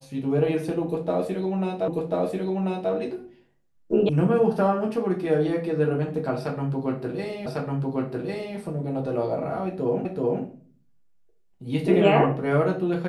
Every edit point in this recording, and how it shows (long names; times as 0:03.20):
0:01.88: the same again, the last 1.04 s
0:04.09: cut off before it has died away
0:07.46: the same again, the last 1.1 s
0:10.05: the same again, the last 0.38 s